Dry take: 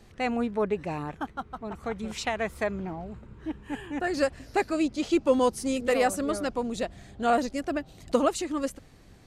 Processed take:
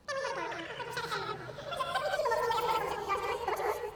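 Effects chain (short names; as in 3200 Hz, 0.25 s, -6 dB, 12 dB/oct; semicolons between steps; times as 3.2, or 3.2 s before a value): gliding pitch shift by -7.5 st starting unshifted; high shelf 4800 Hz -11 dB; on a send: diffused feedback echo 1.185 s, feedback 44%, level -15.5 dB; on the sum: non-linear reverb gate 0.47 s rising, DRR -0.5 dB; speed mistake 33 rpm record played at 78 rpm; gain -7.5 dB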